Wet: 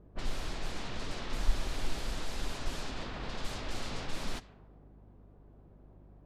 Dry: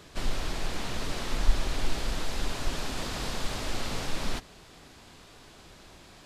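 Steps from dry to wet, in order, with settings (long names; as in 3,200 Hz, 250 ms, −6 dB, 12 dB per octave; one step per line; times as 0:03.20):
low-pass that shuts in the quiet parts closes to 470 Hz, open at −23.5 dBFS
mains hum 50 Hz, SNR 24 dB
level −5.5 dB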